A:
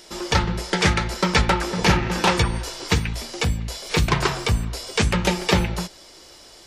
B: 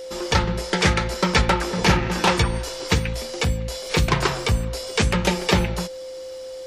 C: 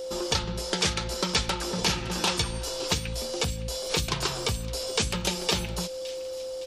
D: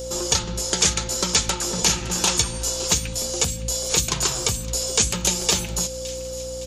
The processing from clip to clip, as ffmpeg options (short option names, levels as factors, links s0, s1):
-af "aeval=exprs='val(0)+0.0251*sin(2*PI*520*n/s)':c=same"
-filter_complex "[0:a]equalizer=f=2000:t=o:w=0.73:g=-9,acrossover=split=2000[s0][s1];[s0]acompressor=threshold=0.0398:ratio=6[s2];[s1]aecho=1:1:563|1126|1689|2252:0.168|0.0806|0.0387|0.0186[s3];[s2][s3]amix=inputs=2:normalize=0"
-af "equalizer=f=6800:t=o:w=0.32:g=12.5,aeval=exprs='val(0)+0.0112*(sin(2*PI*60*n/s)+sin(2*PI*2*60*n/s)/2+sin(2*PI*3*60*n/s)/3+sin(2*PI*4*60*n/s)/4+sin(2*PI*5*60*n/s)/5)':c=same,highshelf=f=10000:g=10.5,volume=1.26"